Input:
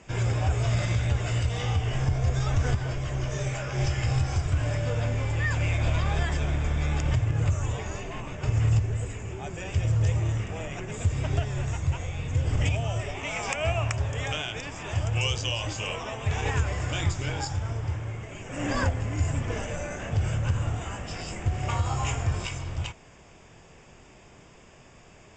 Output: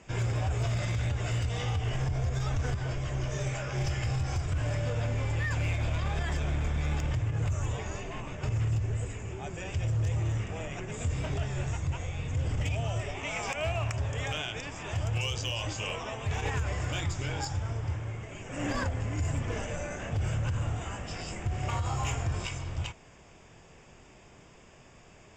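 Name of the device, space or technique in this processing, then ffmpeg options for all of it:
limiter into clipper: -filter_complex "[0:a]alimiter=limit=0.112:level=0:latency=1:release=43,asoftclip=type=hard:threshold=0.0841,asettb=1/sr,asplit=3[s0][s1][s2];[s0]atrim=end=10.964[s3];[s1]atrim=start=10.96:end=11.68,asetpts=PTS-STARTPTS,afade=t=in:d=0.004:c=qsin,afade=t=out:st=0.716:d=0.004:c=qsin,asplit=2[s4][s5];[s5]adelay=25,volume=0.501[s6];[s4][s6]amix=inputs=2:normalize=0,atrim=end_sample=31752[s7];[s2]atrim=start=11.676[s8];[s3][s7]acrossfade=d=0.004:c1=hsin:c2=qsin[s9];[s9][s8]acrossfade=d=0.004:c1=qsin:c2=hsin,volume=0.75"

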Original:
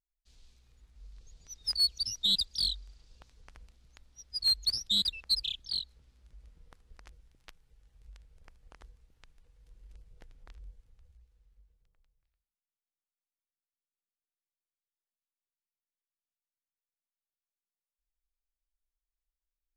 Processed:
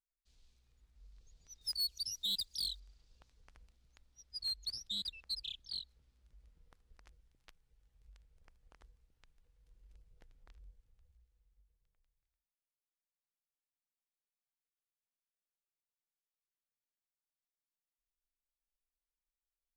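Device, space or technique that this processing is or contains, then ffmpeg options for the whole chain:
clipper into limiter: -filter_complex "[0:a]asettb=1/sr,asplit=3[s0][s1][s2];[s0]atrim=end=1.614[s3];[s1]atrim=start=1.61:end=2.8,asetpts=PTS-STARTPTS,afade=t=in:d=0.004:c=qsin,afade=t=out:st=1.186:d=0.004:c=qsin,aemphasis=mode=production:type=50fm[s4];[s2]atrim=start=2.796[s5];[s3][s4]acrossfade=d=0.004:c1=hsin:c2=qsin[s6];[s6][s5]acrossfade=d=0.004:c1=qsin:c2=hsin,asoftclip=type=hard:threshold=0.106,alimiter=limit=0.0708:level=0:latency=1:release=163,volume=0.376"

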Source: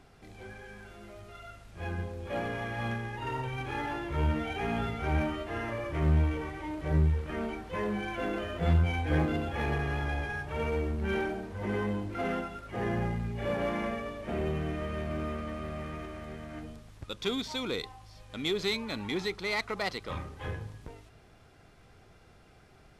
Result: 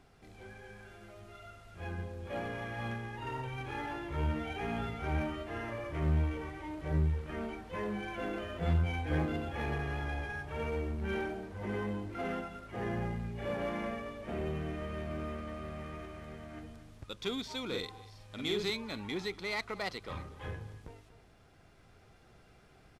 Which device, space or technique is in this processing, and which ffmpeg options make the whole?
ducked delay: -filter_complex "[0:a]asettb=1/sr,asplit=3[s0][s1][s2];[s0]atrim=end=17.664[s3];[s1]atrim=start=17.66:end=18.7,asetpts=PTS-STARTPTS,afade=t=in:d=0.004:c=qsin,afade=t=out:st=1.036:d=0.004:c=qsin,asplit=2[s4][s5];[s5]adelay=48,volume=0.75[s6];[s4][s6]amix=inputs=2:normalize=0,atrim=end_sample=45864[s7];[s2]atrim=start=18.696[s8];[s3][s7]acrossfade=d=0.004:c1=hsin:c2=qsin[s9];[s9][s8]acrossfade=d=0.004:c1=qsin:c2=hsin,asplit=3[s10][s11][s12];[s11]adelay=239,volume=0.75[s13];[s12]apad=whole_len=1024467[s14];[s13][s14]sidechaincompress=threshold=0.00447:ratio=10:attack=16:release=1390[s15];[s10][s15]amix=inputs=2:normalize=0,volume=0.596"

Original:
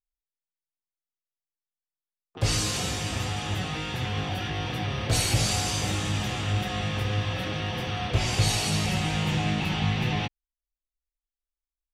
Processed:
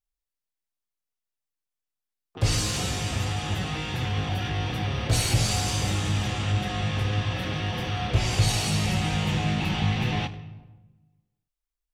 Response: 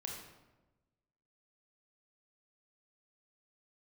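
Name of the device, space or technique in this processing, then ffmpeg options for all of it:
saturated reverb return: -filter_complex "[0:a]asplit=2[s0][s1];[1:a]atrim=start_sample=2205[s2];[s1][s2]afir=irnorm=-1:irlink=0,asoftclip=type=tanh:threshold=0.0355,volume=0.631[s3];[s0][s3]amix=inputs=2:normalize=0,asettb=1/sr,asplit=3[s4][s5][s6];[s4]atrim=end=6.244[s7];[s5]atrim=start=6.24:end=7.37,asetpts=PTS-STARTPTS,afade=t=in:d=0.004:c=qsin,afade=t=out:st=1.126:d=0.004:c=qsin,lowpass=11000[s8];[s6]atrim=start=7.366[s9];[s7][s8]acrossfade=d=0.004:c1=hsin:c2=qsin[s10];[s10][s9]acrossfade=d=0.004:c1=qsin:c2=hsin,lowshelf=f=140:g=4.5,volume=0.794"

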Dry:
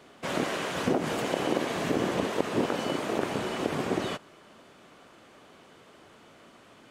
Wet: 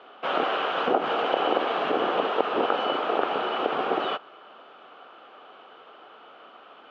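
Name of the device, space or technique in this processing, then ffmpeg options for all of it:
phone earpiece: -af "highpass=390,equalizer=f=460:t=q:w=4:g=4,equalizer=f=770:t=q:w=4:g=8,equalizer=f=1300:t=q:w=4:g=10,equalizer=f=2000:t=q:w=4:g=-6,equalizer=f=3000:t=q:w=4:g=6,lowpass=f=3400:w=0.5412,lowpass=f=3400:w=1.3066,volume=1.33"

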